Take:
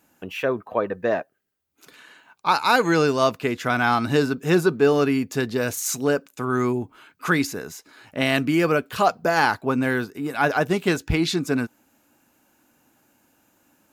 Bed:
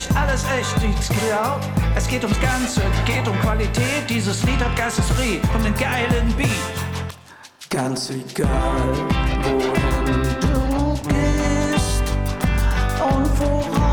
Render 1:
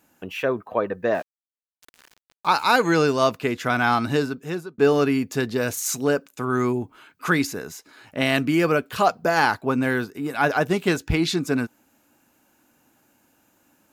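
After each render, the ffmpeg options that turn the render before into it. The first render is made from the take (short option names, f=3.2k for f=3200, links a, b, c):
-filter_complex "[0:a]asettb=1/sr,asplit=3[a][b][c];[a]atrim=end=1.144[d];[b]atrim=start=1.14:end=2.65,asetpts=PTS-STARTPTS,afade=t=in:d=0.004:c=qsin,afade=t=out:st=1.506:d=0.004:c=qsin,aeval=exprs='val(0)*gte(abs(val(0)),0.00841)':c=same[e];[c]atrim=start=2.646[f];[d][e]acrossfade=d=0.004:c1=hsin:c2=qsin[g];[g][f]acrossfade=d=0.004:c1=qsin:c2=hsin,asplit=2[h][i];[h]atrim=end=4.78,asetpts=PTS-STARTPTS,afade=t=out:st=4:d=0.78[j];[i]atrim=start=4.78,asetpts=PTS-STARTPTS,afade=t=in:d=0.004:c=hsin[k];[j][k]concat=n=2:v=0:a=1"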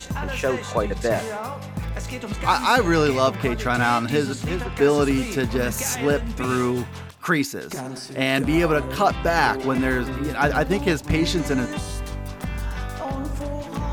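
-filter_complex "[1:a]volume=-10dB[a];[0:a][a]amix=inputs=2:normalize=0"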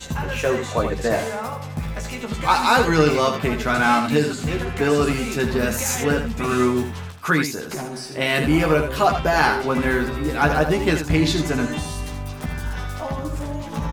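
-filter_complex "[0:a]asplit=2[a][b];[b]adelay=13,volume=-4dB[c];[a][c]amix=inputs=2:normalize=0,aecho=1:1:80:0.398"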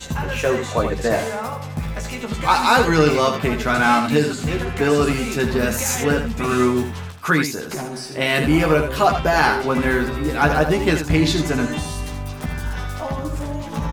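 -af "volume=1.5dB,alimiter=limit=-3dB:level=0:latency=1"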